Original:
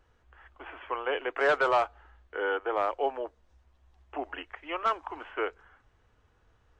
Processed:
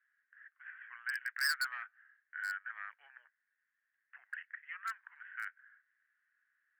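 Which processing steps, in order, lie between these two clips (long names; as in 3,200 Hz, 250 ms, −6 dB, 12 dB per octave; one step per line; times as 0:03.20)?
flat-topped band-pass 1,700 Hz, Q 4
gain into a clipping stage and back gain 30.5 dB
first difference
level +13.5 dB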